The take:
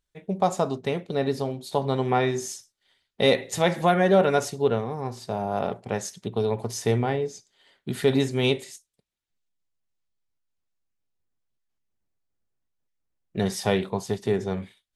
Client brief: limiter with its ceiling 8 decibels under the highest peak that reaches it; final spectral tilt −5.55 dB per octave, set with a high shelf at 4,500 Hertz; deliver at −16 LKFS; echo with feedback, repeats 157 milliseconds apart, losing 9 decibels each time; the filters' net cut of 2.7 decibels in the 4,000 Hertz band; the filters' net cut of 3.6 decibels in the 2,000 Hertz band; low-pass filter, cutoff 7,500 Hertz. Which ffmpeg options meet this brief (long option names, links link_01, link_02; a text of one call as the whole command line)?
ffmpeg -i in.wav -af "lowpass=7500,equalizer=frequency=2000:width_type=o:gain=-4.5,equalizer=frequency=4000:width_type=o:gain=-4,highshelf=frequency=4500:gain=5,alimiter=limit=-16dB:level=0:latency=1,aecho=1:1:157|314|471|628:0.355|0.124|0.0435|0.0152,volume=12.5dB" out.wav